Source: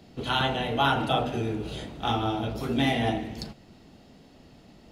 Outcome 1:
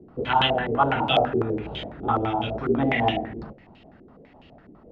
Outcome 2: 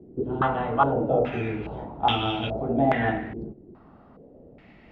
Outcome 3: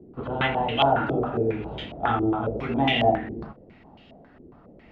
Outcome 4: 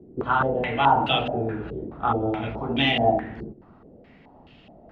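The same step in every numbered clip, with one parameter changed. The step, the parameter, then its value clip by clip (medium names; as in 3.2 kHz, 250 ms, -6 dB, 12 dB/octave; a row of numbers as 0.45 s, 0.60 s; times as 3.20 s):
step-sequenced low-pass, rate: 12 Hz, 2.4 Hz, 7.3 Hz, 4.7 Hz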